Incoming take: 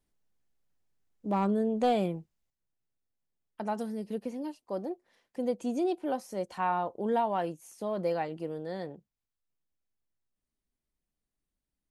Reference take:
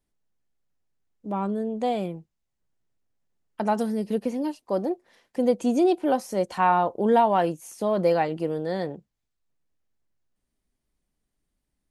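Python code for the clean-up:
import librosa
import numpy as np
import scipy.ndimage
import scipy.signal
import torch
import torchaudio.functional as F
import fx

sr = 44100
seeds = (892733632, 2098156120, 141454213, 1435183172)

y = fx.fix_declip(x, sr, threshold_db=-19.0)
y = fx.fix_level(y, sr, at_s=2.5, step_db=9.0)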